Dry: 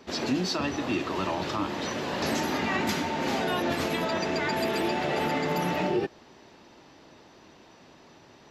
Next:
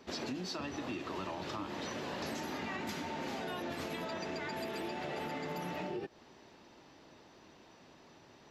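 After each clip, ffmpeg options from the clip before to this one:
-af "acompressor=threshold=-31dB:ratio=6,volume=-5.5dB"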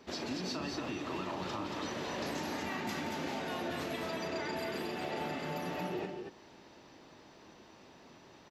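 -af "aecho=1:1:37.9|172|230.3:0.316|0.251|0.631"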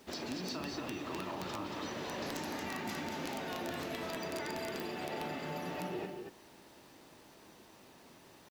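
-af "acrusher=bits=9:mix=0:aa=0.000001,aeval=exprs='(mod(23.7*val(0)+1,2)-1)/23.7':c=same,volume=-2dB"

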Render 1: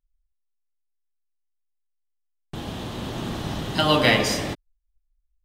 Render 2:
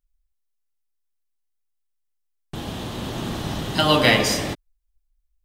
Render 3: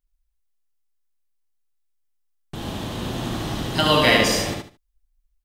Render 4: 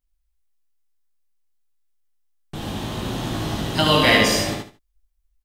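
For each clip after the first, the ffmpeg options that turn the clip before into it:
-af "highshelf=f=6.4k:g=4,volume=1.5dB"
-af "aecho=1:1:74|148|222:0.708|0.17|0.0408,volume=-1dB"
-filter_complex "[0:a]asplit=2[a][b];[b]adelay=19,volume=-5dB[c];[a][c]amix=inputs=2:normalize=0"

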